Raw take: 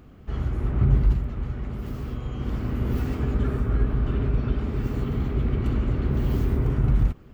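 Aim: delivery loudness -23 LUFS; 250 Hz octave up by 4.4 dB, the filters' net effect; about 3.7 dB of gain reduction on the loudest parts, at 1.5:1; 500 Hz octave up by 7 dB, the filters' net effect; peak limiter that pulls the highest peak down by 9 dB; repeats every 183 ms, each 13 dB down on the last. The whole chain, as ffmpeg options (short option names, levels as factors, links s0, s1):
-af "equalizer=f=250:t=o:g=3.5,equalizer=f=500:t=o:g=8,acompressor=threshold=0.0631:ratio=1.5,alimiter=limit=0.0944:level=0:latency=1,aecho=1:1:183|366|549:0.224|0.0493|0.0108,volume=2.24"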